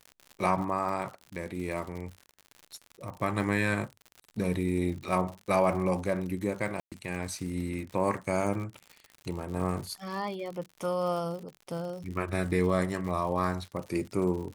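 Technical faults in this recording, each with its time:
crackle 89/s -37 dBFS
6.8–6.92 gap 0.117 s

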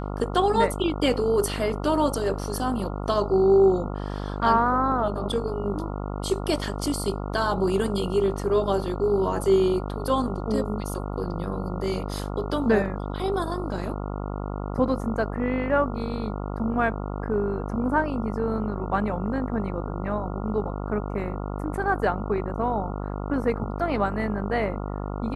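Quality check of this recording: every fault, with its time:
buzz 50 Hz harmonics 28 -31 dBFS

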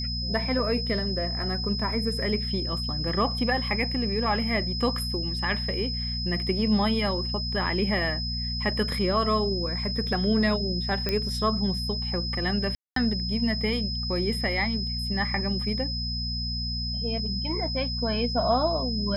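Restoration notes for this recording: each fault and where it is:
hum 60 Hz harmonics 4 -32 dBFS
tone 5100 Hz -31 dBFS
11.09 pop -13 dBFS
12.75–12.96 gap 0.213 s

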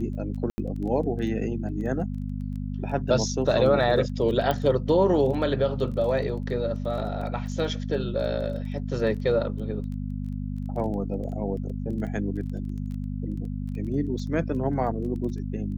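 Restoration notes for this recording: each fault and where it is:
crackle 14/s -35 dBFS
hum 50 Hz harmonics 5 -31 dBFS
0.5–0.58 gap 80 ms
4.51 pop -13 dBFS

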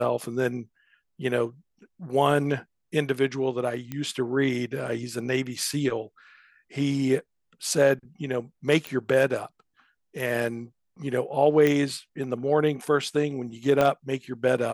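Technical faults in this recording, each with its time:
3.92 pop -19 dBFS
8.87 pop -16 dBFS
11.67 pop
13.81 pop -10 dBFS

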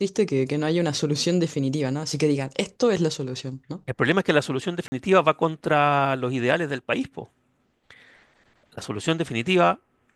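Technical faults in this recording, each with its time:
4.88–4.92 gap 40 ms

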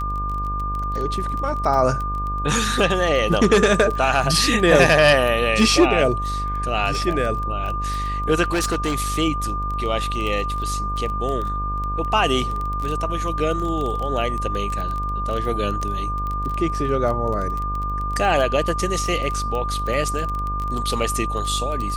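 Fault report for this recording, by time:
buzz 50 Hz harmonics 33 -27 dBFS
crackle 15/s -24 dBFS
tone 1200 Hz -25 dBFS
8.51–8.99 clipped -17 dBFS

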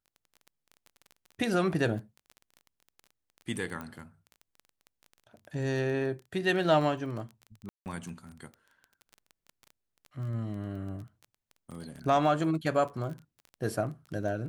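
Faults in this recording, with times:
crackle 15/s -38 dBFS
3.81 pop -25 dBFS
7.69–7.86 gap 0.169 s

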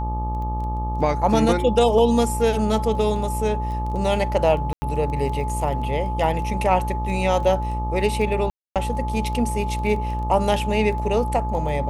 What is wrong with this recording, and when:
buzz 60 Hz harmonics 21 -26 dBFS
crackle 12/s -30 dBFS
tone 860 Hz -28 dBFS
4.73–4.82 gap 90 ms
8.5–8.76 gap 0.257 s

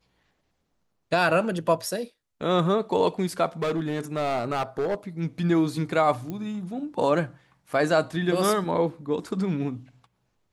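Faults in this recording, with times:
3.62–4.95 clipped -22 dBFS
6.3 pop -21 dBFS

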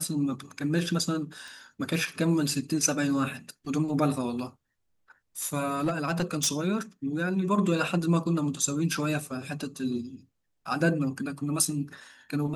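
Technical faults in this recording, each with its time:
1.48 pop
5.84–6.48 clipped -21.5 dBFS

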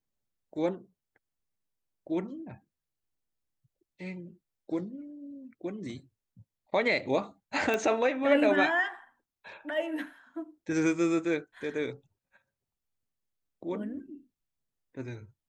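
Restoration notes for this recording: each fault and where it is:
7.74 pop -16 dBFS

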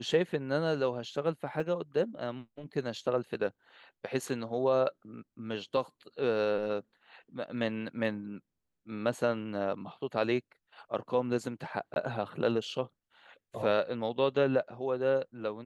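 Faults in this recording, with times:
1.6 gap 4.2 ms
11.94–11.96 gap 21 ms

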